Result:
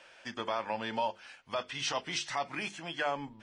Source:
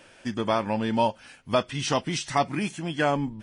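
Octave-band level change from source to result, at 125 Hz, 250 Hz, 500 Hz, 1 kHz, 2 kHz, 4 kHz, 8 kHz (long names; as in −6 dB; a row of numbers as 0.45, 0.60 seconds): −17.5, −15.5, −10.0, −8.0, −4.5, −4.0, −6.0 decibels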